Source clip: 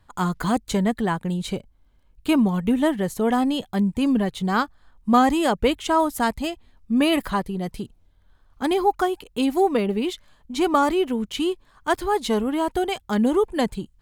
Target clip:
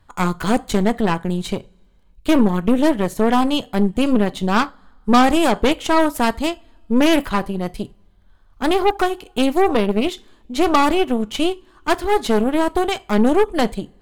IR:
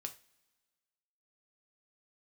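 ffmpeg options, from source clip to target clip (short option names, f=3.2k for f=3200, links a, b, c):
-filter_complex "[0:a]asplit=2[a][b];[1:a]atrim=start_sample=2205,highshelf=f=9.1k:g=-7.5[c];[b][c]afir=irnorm=-1:irlink=0,volume=1.5dB[d];[a][d]amix=inputs=2:normalize=0,aeval=exprs='0.944*(cos(1*acos(clip(val(0)/0.944,-1,1)))-cos(1*PI/2))+0.119*(cos(8*acos(clip(val(0)/0.944,-1,1)))-cos(8*PI/2))':c=same,volume=-2dB"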